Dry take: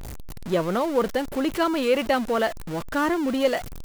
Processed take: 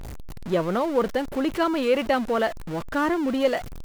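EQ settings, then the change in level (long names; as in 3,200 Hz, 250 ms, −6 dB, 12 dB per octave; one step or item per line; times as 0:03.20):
high-shelf EQ 4,900 Hz −6.5 dB
0.0 dB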